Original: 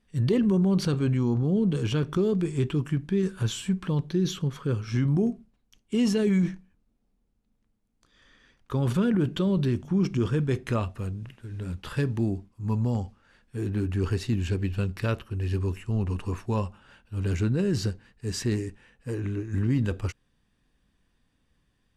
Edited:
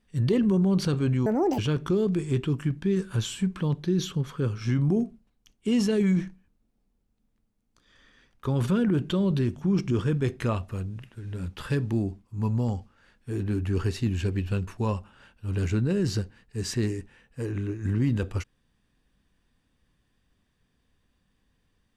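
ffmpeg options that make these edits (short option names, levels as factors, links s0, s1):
-filter_complex "[0:a]asplit=4[s0][s1][s2][s3];[s0]atrim=end=1.264[s4];[s1]atrim=start=1.26:end=1.85,asetpts=PTS-STARTPTS,asetrate=80262,aresample=44100,atrim=end_sample=14296,asetpts=PTS-STARTPTS[s5];[s2]atrim=start=1.846:end=14.942[s6];[s3]atrim=start=16.358[s7];[s4][s5]acrossfade=d=0.004:c1=hsin:c2=hsin[s8];[s8][s6]acrossfade=d=0.004:c1=hsin:c2=hsin[s9];[s9][s7]acrossfade=d=0.004:c1=hsin:c2=hsin"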